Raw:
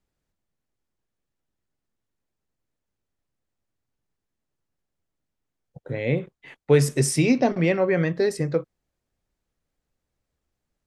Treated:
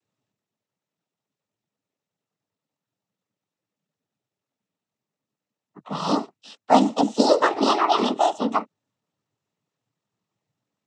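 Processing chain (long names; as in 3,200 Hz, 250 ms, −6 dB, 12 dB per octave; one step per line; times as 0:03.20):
pitch shift by two crossfaded delay taps +10.5 semitones
cochlear-implant simulation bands 12
level +2.5 dB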